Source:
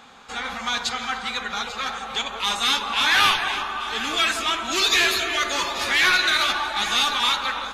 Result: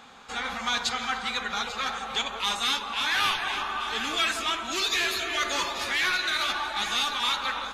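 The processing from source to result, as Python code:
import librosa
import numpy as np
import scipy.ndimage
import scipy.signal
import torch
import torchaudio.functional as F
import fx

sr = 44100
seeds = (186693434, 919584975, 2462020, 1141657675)

y = fx.rider(x, sr, range_db=3, speed_s=0.5)
y = y * librosa.db_to_amplitude(-5.0)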